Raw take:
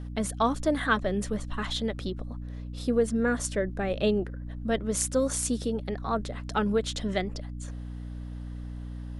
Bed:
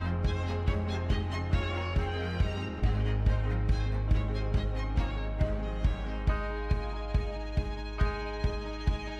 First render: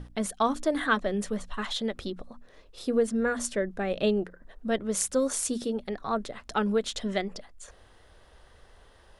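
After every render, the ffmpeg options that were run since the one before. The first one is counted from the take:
-af "bandreject=f=60:t=h:w=6,bandreject=f=120:t=h:w=6,bandreject=f=180:t=h:w=6,bandreject=f=240:t=h:w=6,bandreject=f=300:t=h:w=6"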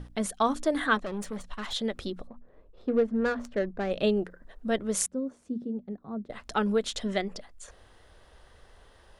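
-filter_complex "[0:a]asettb=1/sr,asplit=3[a][b][c];[a]atrim=end=0.974[d];[b]atrim=start=0.97:end=1.73,asetpts=PTS-STARTPTS,afade=t=in:d=0.004:c=qsin,afade=t=out:st=0.756:d=0.004:c=qsin,aeval=exprs='(tanh(31.6*val(0)+0.55)-tanh(0.55))/31.6':c=same[e];[c]atrim=start=1.726[f];[d][e]acrossfade=d=0.004:c1=hsin:c2=qsin[g];[g][f]acrossfade=d=0.004:c1=qsin:c2=hsin,asettb=1/sr,asplit=3[h][i][j];[h]atrim=end=2.274[k];[i]atrim=start=2.27:end=3.91,asetpts=PTS-STARTPTS,afade=t=in:d=0.004:c=qsin,afade=t=out:st=1.636:d=0.004:c=qsin,adynamicsmooth=sensitivity=2.5:basefreq=1k[l];[j]atrim=start=3.906[m];[k][l]acrossfade=d=0.004:c1=hsin:c2=qsin[n];[n][m]acrossfade=d=0.004:c1=qsin:c2=hsin,asettb=1/sr,asplit=3[o][p][q];[o]atrim=end=5.064[r];[p]atrim=start=5.06:end=6.3,asetpts=PTS-STARTPTS,afade=t=in:d=0.004:c=qsin,afade=t=out:st=1.236:d=0.004:c=qsin,bandpass=f=200:t=q:w=1.5[s];[q]atrim=start=6.296[t];[r][s]acrossfade=d=0.004:c1=hsin:c2=qsin[u];[u][t]acrossfade=d=0.004:c1=qsin:c2=hsin"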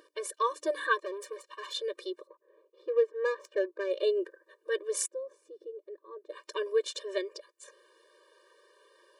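-af "afftfilt=real='re*eq(mod(floor(b*sr/1024/310),2),1)':imag='im*eq(mod(floor(b*sr/1024/310),2),1)':win_size=1024:overlap=0.75"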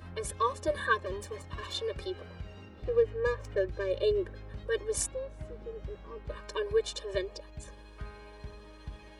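-filter_complex "[1:a]volume=-14.5dB[a];[0:a][a]amix=inputs=2:normalize=0"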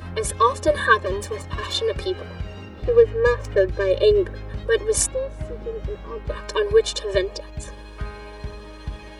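-af "volume=11.5dB"

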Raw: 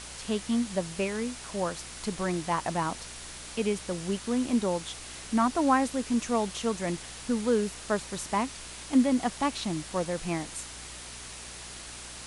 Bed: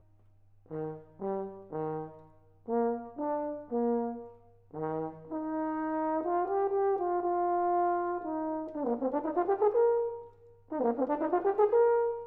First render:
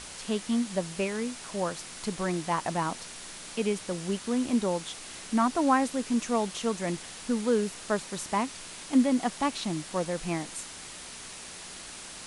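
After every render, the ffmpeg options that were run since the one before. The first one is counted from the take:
-af "bandreject=f=60:t=h:w=4,bandreject=f=120:t=h:w=4"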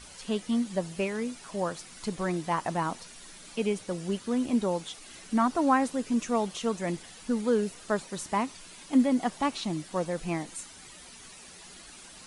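-af "afftdn=nr=10:nf=-44"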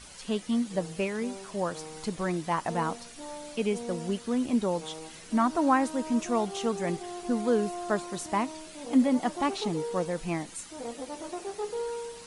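-filter_complex "[1:a]volume=-9dB[a];[0:a][a]amix=inputs=2:normalize=0"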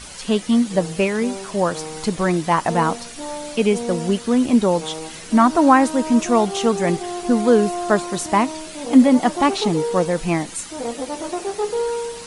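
-af "volume=11dB,alimiter=limit=-1dB:level=0:latency=1"

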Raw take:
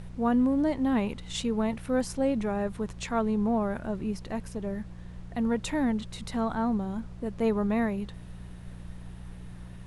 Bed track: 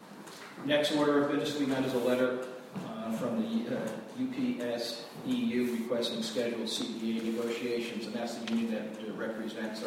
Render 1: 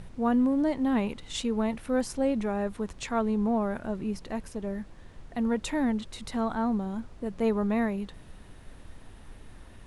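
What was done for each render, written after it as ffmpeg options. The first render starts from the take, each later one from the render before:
-af "bandreject=f=60:t=h:w=4,bandreject=f=120:t=h:w=4,bandreject=f=180:t=h:w=4"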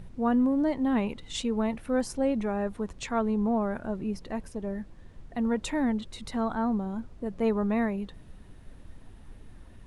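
-af "afftdn=nr=6:nf=-50"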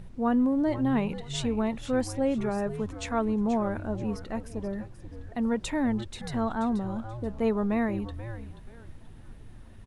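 -filter_complex "[0:a]asplit=4[a][b][c][d];[b]adelay=482,afreqshift=-120,volume=-11.5dB[e];[c]adelay=964,afreqshift=-240,volume=-21.1dB[f];[d]adelay=1446,afreqshift=-360,volume=-30.8dB[g];[a][e][f][g]amix=inputs=4:normalize=0"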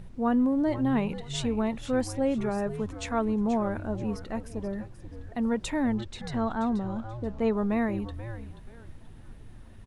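-filter_complex "[0:a]asettb=1/sr,asplit=3[a][b][c];[a]atrim=end=5.944[d];[b]atrim=start=5.94:end=7.53,asetpts=PTS-STARTPTS,afade=t=in:d=0.004:c=qsin,afade=t=out:st=1.586:d=0.004:c=qsin,lowpass=7.5k[e];[c]atrim=start=7.526[f];[d][e]acrossfade=d=0.004:c1=hsin:c2=qsin[g];[g][f]acrossfade=d=0.004:c1=qsin:c2=hsin"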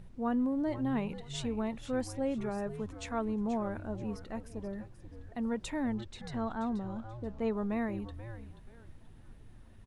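-af "volume=-6.5dB"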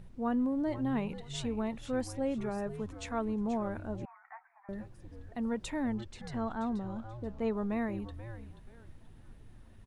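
-filter_complex "[0:a]asettb=1/sr,asplit=3[a][b][c];[a]atrim=end=4.054[d];[b]atrim=start=4.05:end=4.69,asetpts=PTS-STARTPTS,afade=t=in:d=0.004:c=qsin,afade=t=out:st=0.636:d=0.004:c=qsin,asuperpass=centerf=1300:order=20:qfactor=0.84[e];[c]atrim=start=4.686[f];[d][e]acrossfade=d=0.004:c1=hsin:c2=qsin[g];[g][f]acrossfade=d=0.004:c1=qsin:c2=hsin,asettb=1/sr,asplit=3[h][i][j];[h]atrim=end=5.904[k];[i]atrim=start=5.9:end=6.54,asetpts=PTS-STARTPTS,afade=t=in:d=0.004:c=qsin,afade=t=out:st=0.636:d=0.004:c=qsin,bandreject=f=3.8k:w=14[l];[j]atrim=start=6.536[m];[k][l]acrossfade=d=0.004:c1=hsin:c2=qsin[n];[n][m]acrossfade=d=0.004:c1=qsin:c2=hsin"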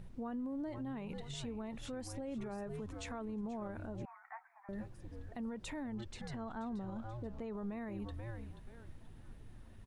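-af "acompressor=threshold=-35dB:ratio=3,alimiter=level_in=11dB:limit=-24dB:level=0:latency=1:release=48,volume=-11dB"

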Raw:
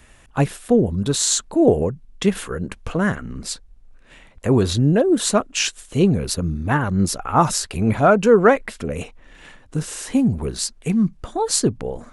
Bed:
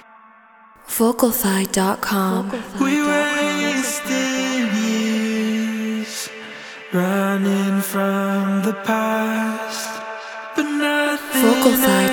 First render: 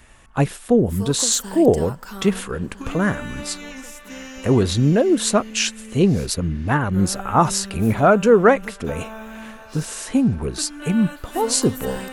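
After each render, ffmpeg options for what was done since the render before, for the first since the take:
-filter_complex "[1:a]volume=-16dB[a];[0:a][a]amix=inputs=2:normalize=0"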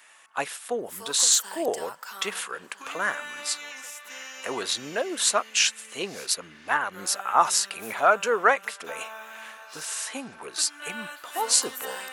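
-af "highpass=910"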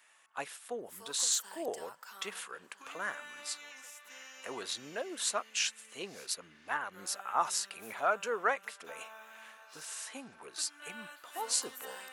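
-af "volume=-10.5dB"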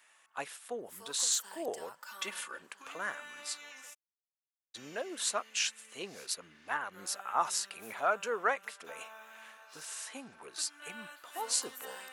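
-filter_complex "[0:a]asettb=1/sr,asplit=3[a][b][c];[a]atrim=end=2.024[d];[b]atrim=start=2.02:end=2.62,asetpts=PTS-STARTPTS,afade=t=in:d=0.004:c=qsin,afade=t=out:st=0.596:d=0.004:c=qsin,aecho=1:1:3.4:0.85,atrim=end_sample=26460[e];[c]atrim=start=2.616[f];[d][e]acrossfade=d=0.004:c1=hsin:c2=qsin[g];[g][f]acrossfade=d=0.004:c1=qsin:c2=hsin,asplit=3[h][i][j];[h]afade=t=out:st=3.93:d=0.02[k];[i]acrusher=bits=2:mix=0:aa=0.5,afade=t=in:st=3.93:d=0.02,afade=t=out:st=4.74:d=0.02[l];[j]afade=t=in:st=4.74:d=0.02[m];[k][l][m]amix=inputs=3:normalize=0"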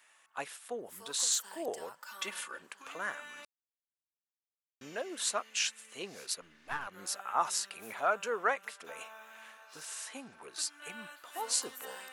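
-filter_complex "[0:a]asettb=1/sr,asplit=3[a][b][c];[a]atrim=end=6.414[d];[b]atrim=start=6.41:end=6.87,asetpts=PTS-STARTPTS,afade=t=in:d=0.004:c=qsin,afade=t=out:st=0.456:d=0.004:c=qsin,aeval=exprs='if(lt(val(0),0),0.447*val(0),val(0))':c=same[e];[c]atrim=start=6.866[f];[d][e]acrossfade=d=0.004:c1=hsin:c2=qsin[g];[g][f]acrossfade=d=0.004:c1=qsin:c2=hsin,asplit=3[h][i][j];[h]atrim=end=3.45,asetpts=PTS-STARTPTS,afade=t=out:st=3.446:d=0.004:c=hsin[k];[i]atrim=start=3.45:end=4.81,asetpts=PTS-STARTPTS,volume=0[l];[j]atrim=start=4.81,asetpts=PTS-STARTPTS,afade=t=in:d=0.004:c=hsin[m];[k][l][m]concat=n=3:v=0:a=1"

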